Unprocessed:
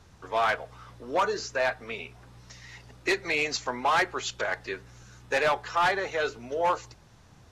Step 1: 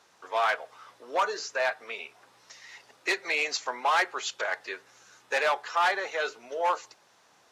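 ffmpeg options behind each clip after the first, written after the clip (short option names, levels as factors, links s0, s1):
-af "highpass=510"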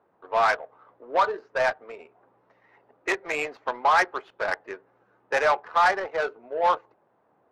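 -af "bass=f=250:g=-5,treble=f=4000:g=-10,adynamicsmooth=sensitivity=1.5:basefreq=680,volume=1.88"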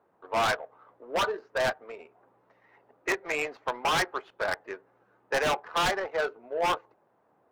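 -af "aeval=exprs='0.119*(abs(mod(val(0)/0.119+3,4)-2)-1)':c=same,volume=0.841"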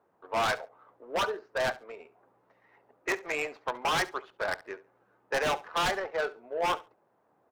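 -af "aecho=1:1:69|138:0.112|0.0191,volume=0.794"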